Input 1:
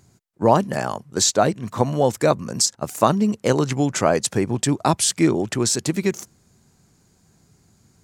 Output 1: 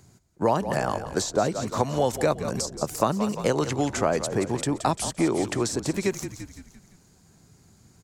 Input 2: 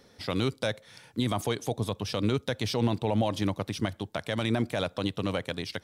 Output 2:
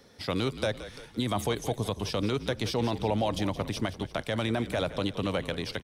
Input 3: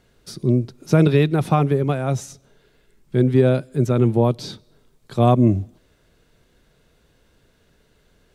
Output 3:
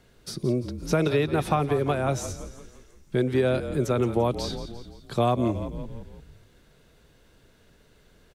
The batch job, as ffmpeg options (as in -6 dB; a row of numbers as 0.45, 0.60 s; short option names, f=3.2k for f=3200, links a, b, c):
-filter_complex "[0:a]asplit=6[a][b][c][d][e][f];[b]adelay=171,afreqshift=-40,volume=-14dB[g];[c]adelay=342,afreqshift=-80,volume=-19.8dB[h];[d]adelay=513,afreqshift=-120,volume=-25.7dB[i];[e]adelay=684,afreqshift=-160,volume=-31.5dB[j];[f]adelay=855,afreqshift=-200,volume=-37.4dB[k];[a][g][h][i][j][k]amix=inputs=6:normalize=0,acrossover=split=400|1200[l][m][n];[l]acompressor=threshold=-29dB:ratio=4[o];[m]acompressor=threshold=-24dB:ratio=4[p];[n]acompressor=threshold=-33dB:ratio=4[q];[o][p][q]amix=inputs=3:normalize=0,volume=1dB"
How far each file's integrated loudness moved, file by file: -5.5, -0.5, -7.0 LU